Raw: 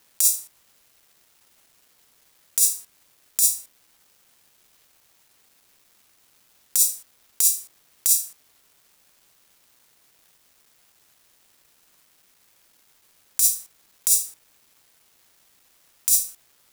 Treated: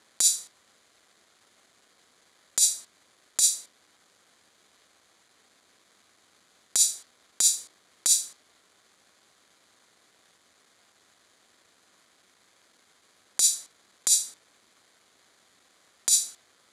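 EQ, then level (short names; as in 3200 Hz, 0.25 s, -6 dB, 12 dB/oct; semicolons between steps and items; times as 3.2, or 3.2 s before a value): notch 890 Hz, Q 12; dynamic EQ 4400 Hz, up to +5 dB, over -40 dBFS, Q 1.4; speaker cabinet 110–8600 Hz, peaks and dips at 140 Hz -9 dB, 2700 Hz -8 dB, 5500 Hz -9 dB, 8300 Hz -7 dB; +4.5 dB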